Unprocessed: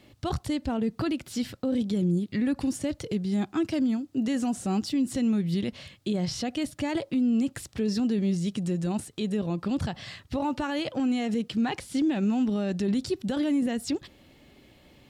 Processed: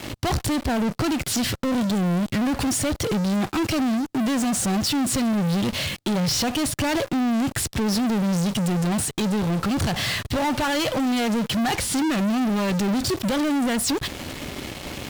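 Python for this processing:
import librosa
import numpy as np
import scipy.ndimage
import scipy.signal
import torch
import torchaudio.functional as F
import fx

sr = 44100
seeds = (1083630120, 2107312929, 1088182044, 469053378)

p1 = fx.dynamic_eq(x, sr, hz=300.0, q=0.86, threshold_db=-38.0, ratio=4.0, max_db=-6)
p2 = fx.leveller(p1, sr, passes=3)
p3 = fx.fuzz(p2, sr, gain_db=46.0, gate_db=-51.0)
p4 = p2 + (p3 * librosa.db_to_amplitude(-9.0))
y = p4 * librosa.db_to_amplitude(-4.5)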